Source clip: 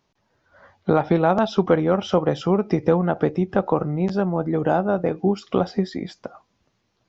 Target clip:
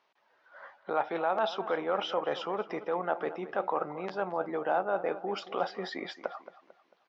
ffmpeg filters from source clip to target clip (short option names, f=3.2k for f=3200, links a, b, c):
-filter_complex "[0:a]dynaudnorm=f=210:g=11:m=4.5dB,alimiter=limit=-8dB:level=0:latency=1:release=26,areverse,acompressor=threshold=-23dB:ratio=6,areverse,highpass=660,lowpass=3.1k,asplit=2[a][b];[b]adelay=223,lowpass=f=2.4k:p=1,volume=-14dB,asplit=2[c][d];[d]adelay=223,lowpass=f=2.4k:p=1,volume=0.41,asplit=2[e][f];[f]adelay=223,lowpass=f=2.4k:p=1,volume=0.41,asplit=2[g][h];[h]adelay=223,lowpass=f=2.4k:p=1,volume=0.41[i];[a][c][e][g][i]amix=inputs=5:normalize=0,volume=3dB"